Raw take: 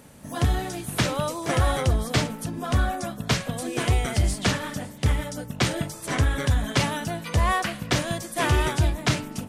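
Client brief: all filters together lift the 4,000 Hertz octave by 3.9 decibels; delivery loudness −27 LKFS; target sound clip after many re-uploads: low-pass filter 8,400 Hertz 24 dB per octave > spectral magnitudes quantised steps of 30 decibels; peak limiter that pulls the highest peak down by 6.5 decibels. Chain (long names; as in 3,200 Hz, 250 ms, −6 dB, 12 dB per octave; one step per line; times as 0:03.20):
parametric band 4,000 Hz +5 dB
brickwall limiter −14.5 dBFS
low-pass filter 8,400 Hz 24 dB per octave
spectral magnitudes quantised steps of 30 dB
level +0.5 dB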